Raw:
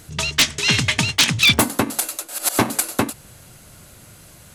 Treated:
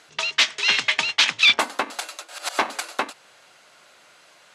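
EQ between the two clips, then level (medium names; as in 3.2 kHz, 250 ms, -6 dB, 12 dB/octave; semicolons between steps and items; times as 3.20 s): band-pass 670–4400 Hz; 0.0 dB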